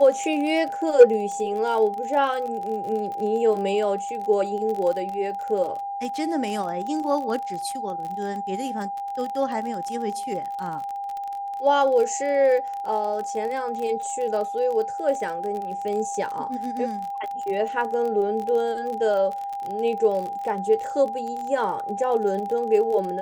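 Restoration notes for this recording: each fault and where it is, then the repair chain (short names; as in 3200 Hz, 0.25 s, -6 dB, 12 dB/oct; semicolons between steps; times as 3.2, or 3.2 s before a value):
crackle 34/s -29 dBFS
tone 800 Hz -28 dBFS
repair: de-click; notch 800 Hz, Q 30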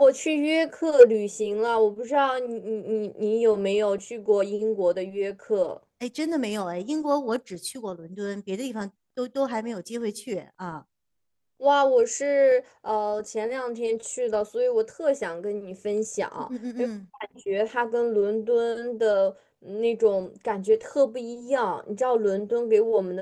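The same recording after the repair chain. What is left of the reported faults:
none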